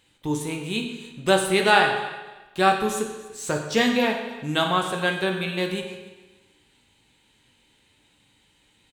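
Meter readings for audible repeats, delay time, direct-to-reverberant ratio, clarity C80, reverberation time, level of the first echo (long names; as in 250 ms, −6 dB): 2, 292 ms, 1.5 dB, 7.0 dB, 1.2 s, −19.5 dB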